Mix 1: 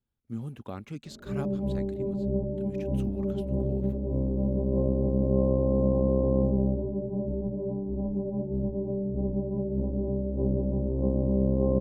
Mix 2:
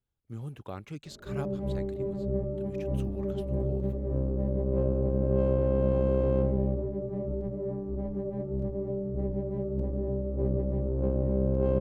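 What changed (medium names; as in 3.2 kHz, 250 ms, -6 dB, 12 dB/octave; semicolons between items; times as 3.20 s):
background: remove brick-wall FIR low-pass 1.1 kHz; master: add peaking EQ 230 Hz -10 dB 0.42 oct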